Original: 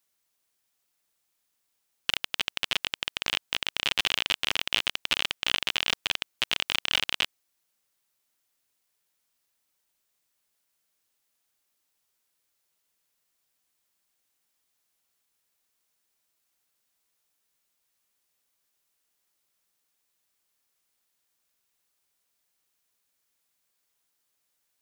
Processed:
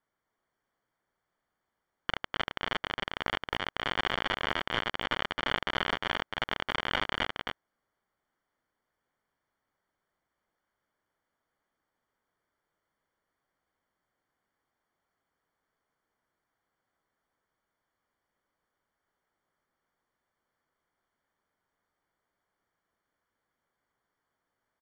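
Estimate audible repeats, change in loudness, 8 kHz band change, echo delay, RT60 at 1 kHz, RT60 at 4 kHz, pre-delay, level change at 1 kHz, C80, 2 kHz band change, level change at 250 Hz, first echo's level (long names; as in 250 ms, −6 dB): 1, −5.0 dB, −17.0 dB, 268 ms, no reverb audible, no reverb audible, no reverb audible, +5.5 dB, no reverb audible, −2.0 dB, +5.5 dB, −3.5 dB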